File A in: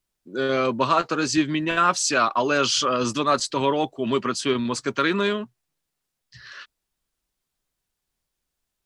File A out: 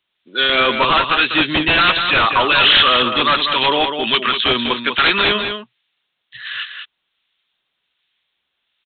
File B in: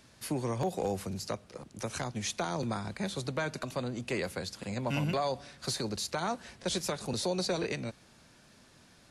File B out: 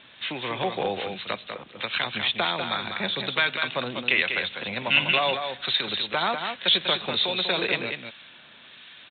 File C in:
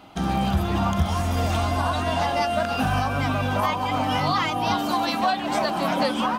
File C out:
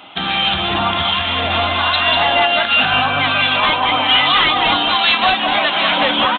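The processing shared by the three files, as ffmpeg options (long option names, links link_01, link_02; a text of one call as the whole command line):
ffmpeg -i in.wav -filter_complex "[0:a]highpass=frequency=230:poles=1,highshelf=frequency=2100:gain=7,crystalizer=i=9.5:c=0,aresample=8000,aeval=exprs='0.335*(abs(mod(val(0)/0.335+3,4)-2)-1)':channel_layout=same,aresample=44100,acrossover=split=1300[link_01][link_02];[link_01]aeval=exprs='val(0)*(1-0.5/2+0.5/2*cos(2*PI*1.3*n/s))':channel_layout=same[link_03];[link_02]aeval=exprs='val(0)*(1-0.5/2-0.5/2*cos(2*PI*1.3*n/s))':channel_layout=same[link_04];[link_03][link_04]amix=inputs=2:normalize=0,aecho=1:1:196:0.473,volume=4dB" out.wav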